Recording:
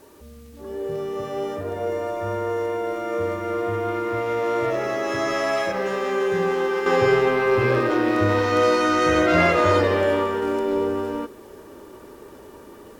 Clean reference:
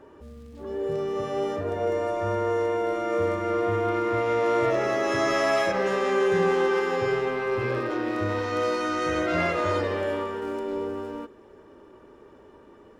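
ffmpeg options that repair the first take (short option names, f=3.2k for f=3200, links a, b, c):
-af "agate=range=-21dB:threshold=-35dB,asetnsamples=n=441:p=0,asendcmd='6.86 volume volume -7.5dB',volume=0dB"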